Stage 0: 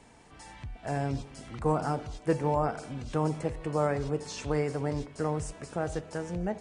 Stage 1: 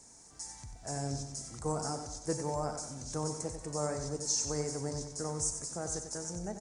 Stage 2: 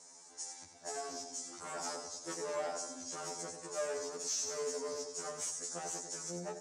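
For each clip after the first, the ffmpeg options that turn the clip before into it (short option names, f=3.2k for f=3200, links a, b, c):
-af "highshelf=f=4.3k:t=q:w=3:g=13.5,aecho=1:1:93|186|279|372|465|558:0.376|0.184|0.0902|0.0442|0.0217|0.0106,volume=-7.5dB"
-af "volume=34.5dB,asoftclip=hard,volume=-34.5dB,highpass=340,lowpass=7.7k,afftfilt=real='re*2*eq(mod(b,4),0)':imag='im*2*eq(mod(b,4),0)':win_size=2048:overlap=0.75,volume=4dB"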